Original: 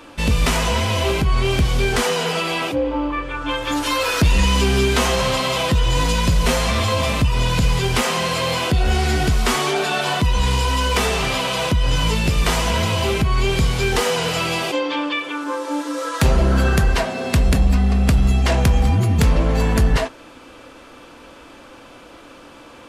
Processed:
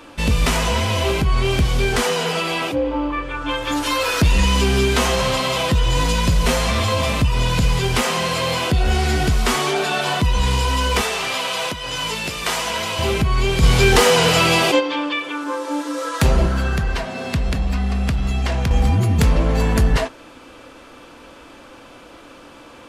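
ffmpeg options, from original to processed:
-filter_complex "[0:a]asettb=1/sr,asplit=3[s0][s1][s2];[s0]atrim=end=11.014[s3];[s1]atrim=start=11.01:end=12.99,asetpts=PTS-STARTPTS,afade=t=in:d=0.004:c=qsin,afade=t=out:st=1.976:d=0.004:c=qsin,highpass=f=620:p=1[s4];[s2]atrim=start=12.986[s5];[s3][s4]acrossfade=d=0.004:c1=hsin:c2=qsin[s6];[s6][s5]acrossfade=d=0.004:c1=qsin:c2=hsin,asplit=3[s7][s8][s9];[s7]afade=t=out:st=13.62:d=0.02[s10];[s8]acontrast=72,afade=t=in:st=13.62:d=0.02,afade=t=out:st=14.79:d=0.02[s11];[s9]afade=t=in:st=14.79:d=0.02[s12];[s10][s11][s12]amix=inputs=3:normalize=0,asettb=1/sr,asplit=3[s13][s14][s15];[s13]atrim=end=16.464[s16];[s14]atrim=start=16.46:end=18.71,asetpts=PTS-STARTPTS,afade=t=in:d=0.004:c=qsin,afade=t=out:st=2.246:d=0.004:c=qsin,acrossover=split=230|700|5900[s17][s18][s19][s20];[s17]acompressor=threshold=0.112:ratio=3[s21];[s18]acompressor=threshold=0.02:ratio=3[s22];[s19]acompressor=threshold=0.0447:ratio=3[s23];[s20]acompressor=threshold=0.00447:ratio=3[s24];[s21][s22][s23][s24]amix=inputs=4:normalize=0[s25];[s15]atrim=start=18.706[s26];[s16][s25]acrossfade=d=0.004:c1=hsin:c2=qsin[s27];[s27][s26]acrossfade=d=0.004:c1=qsin:c2=hsin"

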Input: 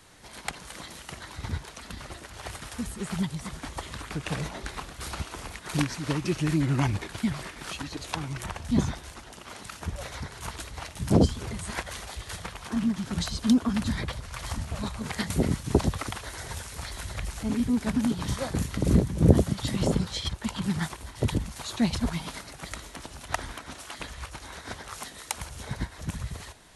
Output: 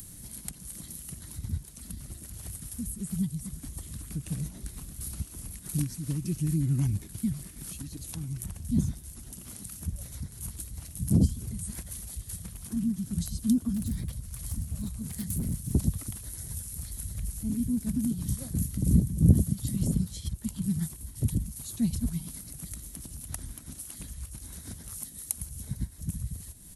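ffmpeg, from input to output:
-filter_complex "[0:a]asettb=1/sr,asplit=3[s0][s1][s2];[s0]atrim=end=13.754[s3];[s1]atrim=start=13.75:end=15.75,asetpts=PTS-STARTPTS,afade=t=in:d=0.004:c=qsin,afade=t=out:st=1.996:d=0.004:c=qsin,asoftclip=type=hard:threshold=0.0562[s4];[s2]atrim=start=15.746[s5];[s3][s4]acrossfade=d=0.004:c1=hsin:c2=qsin[s6];[s6][s5]acrossfade=d=0.004:c1=qsin:c2=hsin,firequalizer=gain_entry='entry(190,0);entry(420,-16);entry(870,-23);entry(11000,9)':delay=0.05:min_phase=1,acompressor=mode=upward:threshold=0.0178:ratio=2.5"

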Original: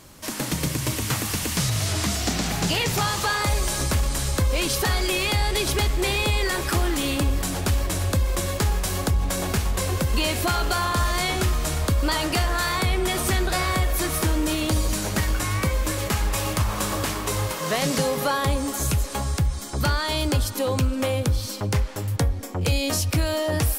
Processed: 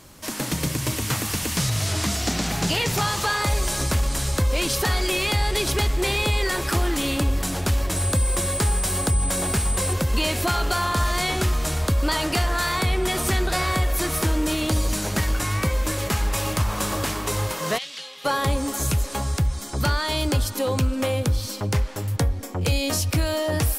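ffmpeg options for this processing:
-filter_complex "[0:a]asettb=1/sr,asplit=3[s0][s1][s2];[s0]atrim=end=7.964[s3];[s1]atrim=start=7.96:end=9.93,asetpts=PTS-STARTPTS,afade=t=in:d=0.004:c=qsin,afade=t=out:st=1.966:d=0.004:c=qsin,aeval=exprs='val(0)+0.0447*sin(2*PI*8100*n/s)':c=same[s4];[s2]atrim=start=9.926[s5];[s3][s4]acrossfade=d=0.004:c1=hsin:c2=qsin[s6];[s6][s5]acrossfade=d=0.004:c1=qsin:c2=hsin,asplit=3[s7][s8][s9];[s7]afade=t=out:st=17.77:d=0.02[s10];[s8]bandpass=f=3300:t=q:w=2.7,afade=t=in:st=17.77:d=0.02,afade=t=out:st=18.24:d=0.02[s11];[s9]afade=t=in:st=18.24:d=0.02[s12];[s10][s11][s12]amix=inputs=3:normalize=0"

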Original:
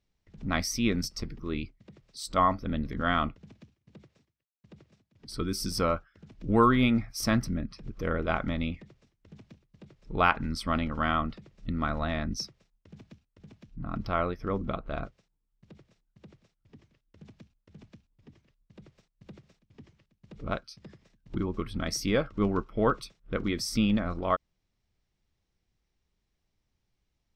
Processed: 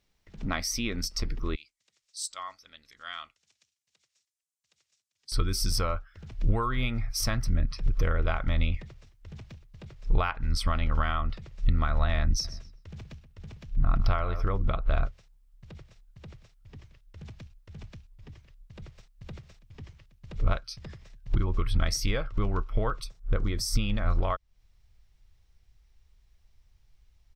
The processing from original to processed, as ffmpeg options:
-filter_complex "[0:a]asettb=1/sr,asplit=3[s0][s1][s2];[s0]atrim=end=1.554[s3];[s1]atrim=start=1.55:end=5.32,asetpts=PTS-STARTPTS,afade=t=in:d=0.004:c=qsin,afade=t=out:st=3.766:d=0.004:c=qsin,bandpass=f=7600:t=q:w=1.7[s4];[s2]atrim=start=5.316[s5];[s3][s4]acrossfade=d=0.004:c1=hsin:c2=qsin[s6];[s6][s5]acrossfade=d=0.004:c1=qsin:c2=hsin,asplit=3[s7][s8][s9];[s7]afade=t=out:st=12.43:d=0.02[s10];[s8]asplit=2[s11][s12];[s12]adelay=126,lowpass=f=2900:p=1,volume=0.224,asplit=2[s13][s14];[s14]adelay=126,lowpass=f=2900:p=1,volume=0.35,asplit=2[s15][s16];[s16]adelay=126,lowpass=f=2900:p=1,volume=0.35[s17];[s11][s13][s15][s17]amix=inputs=4:normalize=0,afade=t=in:st=12.43:d=0.02,afade=t=out:st=14.41:d=0.02[s18];[s9]afade=t=in:st=14.41:d=0.02[s19];[s10][s18][s19]amix=inputs=3:normalize=0,asettb=1/sr,asplit=3[s20][s21][s22];[s20]atrim=end=23.044[s23];[s21]atrim=start=23.04:end=23.79,asetpts=PTS-STARTPTS,afade=t=in:d=0.004:c=qsin,afade=t=out:st=0.746:d=0.004:c=qsin,equalizer=f=2600:w=0.86:g=-8.5[s24];[s22]atrim=start=23.786[s25];[s23][s24]acrossfade=d=0.004:c1=hsin:c2=qsin[s26];[s26][s25]acrossfade=d=0.004:c1=qsin:c2=hsin,lowshelf=f=450:g=-6.5,acompressor=threshold=0.0141:ratio=4,asubboost=boost=9.5:cutoff=76,volume=2.66"

